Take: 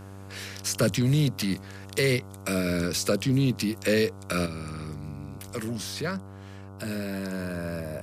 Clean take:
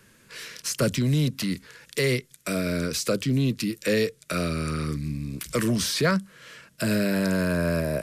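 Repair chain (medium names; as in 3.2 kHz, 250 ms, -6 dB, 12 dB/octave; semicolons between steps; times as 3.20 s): de-hum 97.5 Hz, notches 15; gain correction +8.5 dB, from 4.46 s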